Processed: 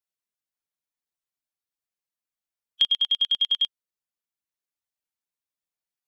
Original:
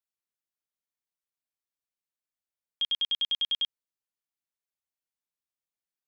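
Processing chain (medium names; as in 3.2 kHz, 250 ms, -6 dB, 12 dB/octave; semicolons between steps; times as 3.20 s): coarse spectral quantiser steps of 15 dB; transient shaper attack +11 dB, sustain -1 dB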